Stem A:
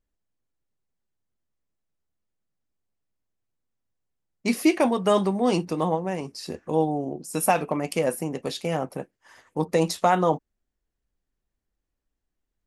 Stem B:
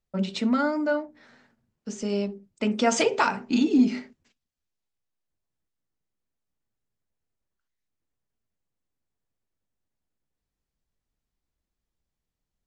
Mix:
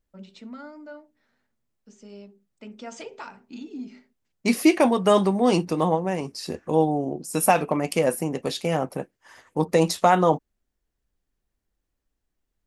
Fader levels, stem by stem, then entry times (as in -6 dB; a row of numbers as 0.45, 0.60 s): +2.5, -16.5 dB; 0.00, 0.00 s